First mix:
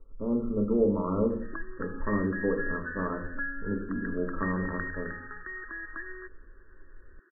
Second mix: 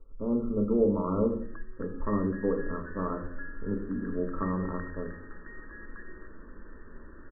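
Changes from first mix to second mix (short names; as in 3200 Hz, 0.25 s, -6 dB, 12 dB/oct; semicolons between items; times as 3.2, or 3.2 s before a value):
first sound -10.0 dB; second sound: unmuted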